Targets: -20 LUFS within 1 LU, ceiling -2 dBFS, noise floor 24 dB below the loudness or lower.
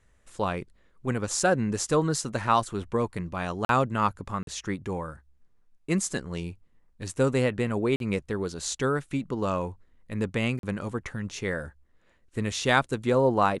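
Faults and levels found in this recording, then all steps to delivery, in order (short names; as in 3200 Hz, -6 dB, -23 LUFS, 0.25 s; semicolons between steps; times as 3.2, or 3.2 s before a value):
dropouts 4; longest dropout 42 ms; loudness -28.0 LUFS; peak -7.0 dBFS; loudness target -20.0 LUFS
-> interpolate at 3.65/4.43/7.96/10.59, 42 ms; gain +8 dB; limiter -2 dBFS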